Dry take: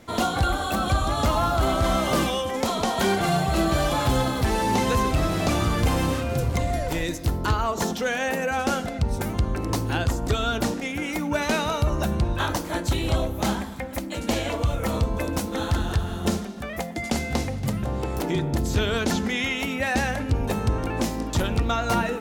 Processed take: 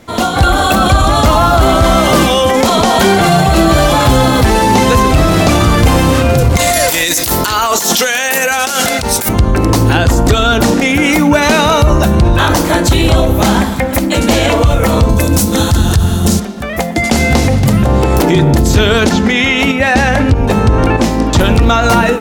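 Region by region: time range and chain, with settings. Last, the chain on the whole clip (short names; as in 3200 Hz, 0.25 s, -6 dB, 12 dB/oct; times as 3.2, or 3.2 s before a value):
6.57–9.29 tilt +4 dB/oct + negative-ratio compressor -31 dBFS
15.09–16.4 HPF 58 Hz + tone controls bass +9 dB, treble +12 dB
19.09–21.41 high shelf 8500 Hz -11 dB + tremolo saw up 1.6 Hz, depth 55%
whole clip: AGC gain up to 13 dB; limiter -10 dBFS; gain +8.5 dB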